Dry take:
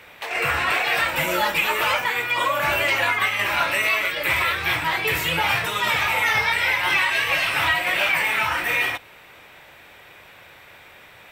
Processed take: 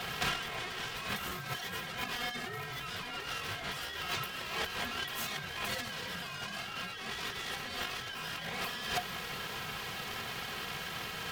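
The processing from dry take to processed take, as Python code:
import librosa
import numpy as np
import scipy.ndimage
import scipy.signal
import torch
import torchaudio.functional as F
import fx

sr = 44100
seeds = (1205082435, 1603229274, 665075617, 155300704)

y = fx.lower_of_two(x, sr, delay_ms=3.4)
y = fx.over_compress(y, sr, threshold_db=-36.0, ratio=-1.0)
y = y * np.sin(2.0 * np.pi * 720.0 * np.arange(len(y)) / sr)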